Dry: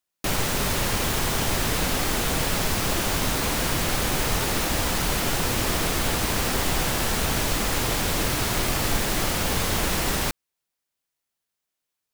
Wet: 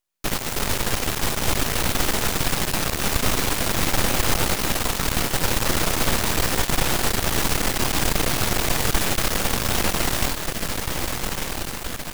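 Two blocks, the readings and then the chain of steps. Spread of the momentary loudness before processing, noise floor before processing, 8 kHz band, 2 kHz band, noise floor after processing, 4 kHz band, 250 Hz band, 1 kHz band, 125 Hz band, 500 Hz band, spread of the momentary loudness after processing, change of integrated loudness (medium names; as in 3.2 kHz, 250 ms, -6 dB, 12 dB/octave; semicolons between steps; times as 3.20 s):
0 LU, -84 dBFS, +2.0 dB, +2.0 dB, -31 dBFS, +2.0 dB, +1.0 dB, +1.5 dB, +1.0 dB, +1.5 dB, 5 LU, +1.5 dB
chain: echo that smears into a reverb 1377 ms, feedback 57%, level -5 dB; half-wave rectifier; trim +4.5 dB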